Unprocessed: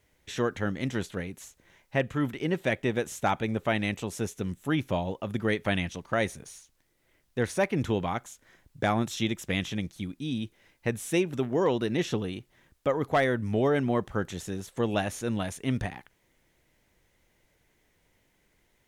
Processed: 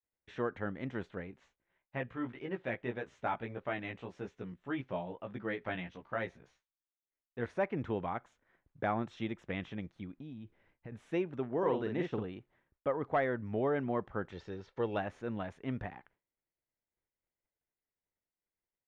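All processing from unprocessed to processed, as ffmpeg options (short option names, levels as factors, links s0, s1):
-filter_complex "[0:a]asettb=1/sr,asplit=3[s0][s1][s2];[s0]atrim=end=1.314[s3];[s1]atrim=start=1.31:end=7.46,asetpts=PTS-STARTPTS,afade=t=in:d=0.004:c=qsin,afade=t=out:st=6.146:d=0.004:c=qsin,lowpass=4100,aemphasis=mode=production:type=75kf,flanger=delay=15:depth=2.4:speed=1.7[s4];[s2]atrim=start=7.456[s5];[s3][s4]acrossfade=d=0.004:c1=hsin:c2=qsin[s6];[s6][s5]acrossfade=d=0.004:c1=qsin:c2=hsin,asettb=1/sr,asplit=3[s7][s8][s9];[s7]atrim=end=10.174[s10];[s8]atrim=start=10.17:end=10.92,asetpts=PTS-STARTPTS,afade=t=in:d=0.004:c=qsin,afade=t=out:st=0.746:d=0.004:c=qsin,lowshelf=f=190:g=8.5,acompressor=threshold=0.02:ratio=6:attack=3.2:release=140:knee=1:detection=peak[s11];[s9]atrim=start=10.916[s12];[s10][s11]acrossfade=d=0.004:c1=hsin:c2=qsin[s13];[s13][s12]acrossfade=d=0.004:c1=qsin:c2=hsin,asettb=1/sr,asplit=3[s14][s15][s16];[s14]atrim=end=11.584[s17];[s15]atrim=start=11.58:end=12.24,asetpts=PTS-STARTPTS,afade=t=in:d=0.004:c=qsin,afade=t=out:st=0.656:d=0.004:c=qsin,agate=range=0.0224:threshold=0.0224:ratio=3:release=100:detection=peak,asplit=2[s18][s19];[s19]adelay=46,volume=0.596[s20];[s18][s20]amix=inputs=2:normalize=0,atrim=end_sample=29106[s21];[s16]atrim=start=12.236[s22];[s17][s21]acrossfade=d=0.004:c1=hsin:c2=qsin[s23];[s23][s22]acrossfade=d=0.004:c1=qsin:c2=hsin,asettb=1/sr,asplit=3[s24][s25][s26];[s24]atrim=end=14.324[s27];[s25]atrim=start=14.32:end=14.98,asetpts=PTS-STARTPTS,afade=t=in:d=0.004:c=qsin,afade=t=out:st=0.656:d=0.004:c=qsin,agate=range=0.0224:threshold=0.00224:ratio=3:release=100:detection=peak,lowpass=f=4900:t=q:w=3.2,aecho=1:1:2.2:0.33,atrim=end_sample=29106[s28];[s26]atrim=start=14.976[s29];[s27][s28]acrossfade=d=0.004:c1=hsin:c2=qsin[s30];[s30][s29]acrossfade=d=0.004:c1=qsin:c2=hsin,lowpass=1700,agate=range=0.0224:threshold=0.00158:ratio=3:detection=peak,lowshelf=f=320:g=-6.5,volume=0.596"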